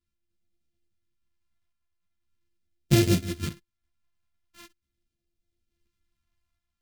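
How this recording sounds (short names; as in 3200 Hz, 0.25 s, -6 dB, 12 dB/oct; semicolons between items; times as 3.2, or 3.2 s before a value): a buzz of ramps at a fixed pitch in blocks of 128 samples; phasing stages 2, 0.42 Hz, lowest notch 420–1000 Hz; random-step tremolo; a shimmering, thickened sound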